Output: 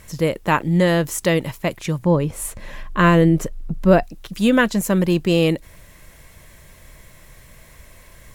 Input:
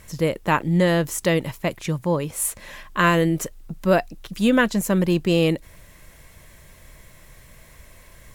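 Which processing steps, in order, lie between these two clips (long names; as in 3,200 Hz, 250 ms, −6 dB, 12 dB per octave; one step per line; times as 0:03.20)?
0:02.02–0:04.03: spectral tilt −2 dB per octave
level +2 dB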